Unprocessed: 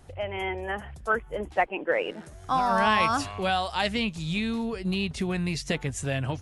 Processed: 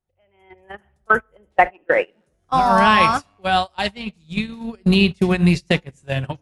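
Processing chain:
automatic gain control gain up to 14 dB
rectangular room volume 3,200 cubic metres, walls furnished, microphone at 1 metre
noise gate −14 dBFS, range −31 dB
level −1 dB

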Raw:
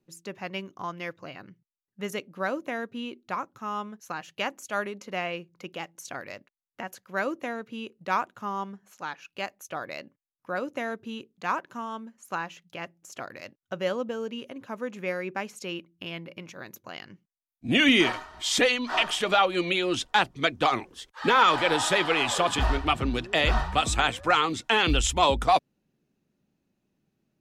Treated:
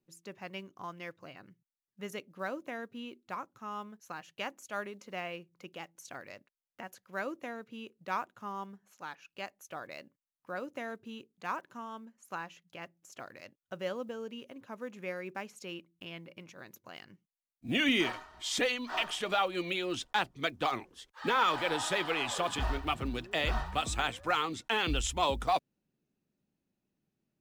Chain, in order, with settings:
one scale factor per block 7 bits
level −8 dB

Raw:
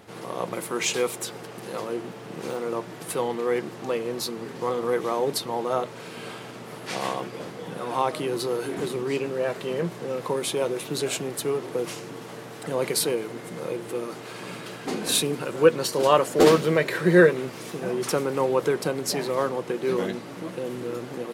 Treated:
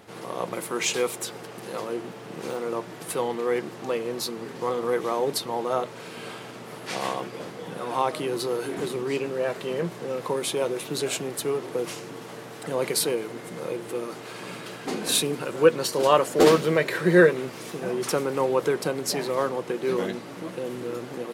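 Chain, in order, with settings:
low-shelf EQ 180 Hz −3 dB

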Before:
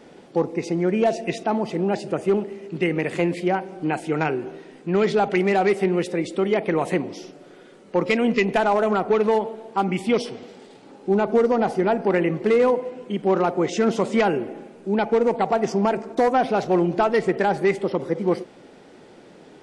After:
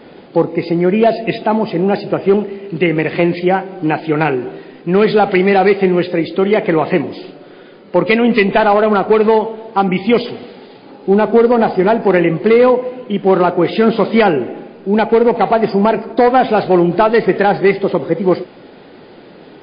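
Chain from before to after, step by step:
level +9 dB
MP3 24 kbit/s 11,025 Hz

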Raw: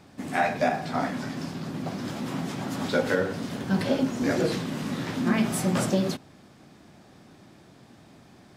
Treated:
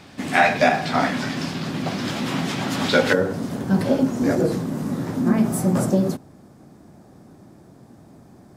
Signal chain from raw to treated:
parametric band 3,000 Hz +6.5 dB 2.1 octaves, from 0:03.13 −9 dB, from 0:04.35 −15 dB
level +6 dB

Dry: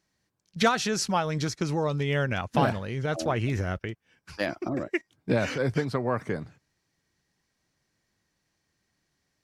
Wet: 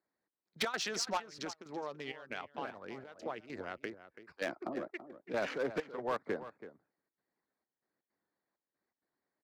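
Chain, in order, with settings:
adaptive Wiener filter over 15 samples
high-pass filter 62 Hz
high-shelf EQ 5,400 Hz +9 dB
harmonic and percussive parts rebalanced harmonic −9 dB
three-way crossover with the lows and the highs turned down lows −18 dB, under 240 Hz, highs −16 dB, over 5,000 Hz
0:01.17–0:03.80: downward compressor 4 to 1, threshold −35 dBFS, peak gain reduction 12 dB
gate pattern "xxx..xx.xx" 163 BPM −12 dB
gain into a clipping stage and back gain 24.5 dB
slap from a distant wall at 57 metres, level −13 dB
wow of a warped record 78 rpm, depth 100 cents
level −2.5 dB

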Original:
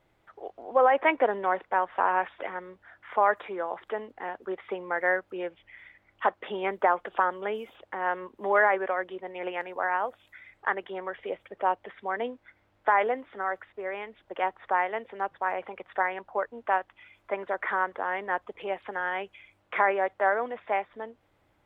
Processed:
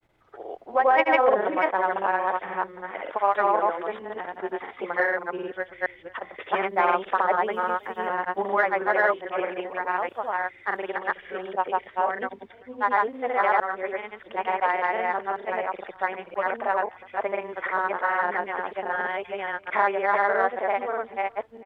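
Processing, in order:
delay that plays each chunk backwards 339 ms, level −1 dB
single-tap delay 417 ms −24 dB
in parallel at −9.5 dB: soft clipping −15 dBFS, distortion −17 dB
on the sum: granular cloud, pitch spread up and down by 0 semitones

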